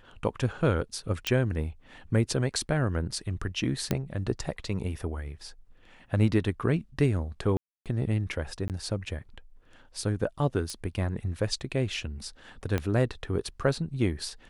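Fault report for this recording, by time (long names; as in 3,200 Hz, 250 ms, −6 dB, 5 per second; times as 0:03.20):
0:01.27: click −12 dBFS
0:03.91: click −12 dBFS
0:07.57–0:07.86: drop-out 287 ms
0:08.68–0:08.70: drop-out 18 ms
0:10.70: click −21 dBFS
0:12.78: click −15 dBFS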